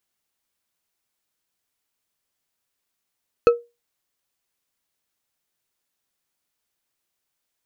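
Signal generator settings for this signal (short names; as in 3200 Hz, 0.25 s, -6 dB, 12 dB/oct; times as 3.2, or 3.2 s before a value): glass hit bar, lowest mode 474 Hz, decay 0.24 s, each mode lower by 8.5 dB, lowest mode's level -6.5 dB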